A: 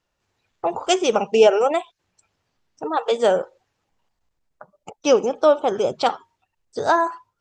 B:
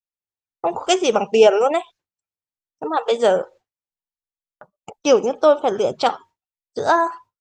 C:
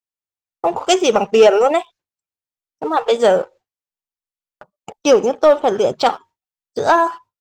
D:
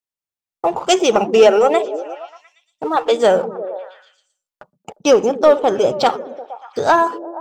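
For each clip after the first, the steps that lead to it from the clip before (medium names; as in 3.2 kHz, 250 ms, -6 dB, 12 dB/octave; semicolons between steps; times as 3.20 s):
expander -40 dBFS; trim +1.5 dB
waveshaping leveller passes 1
repeats whose band climbs or falls 117 ms, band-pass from 170 Hz, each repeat 0.7 oct, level -6.5 dB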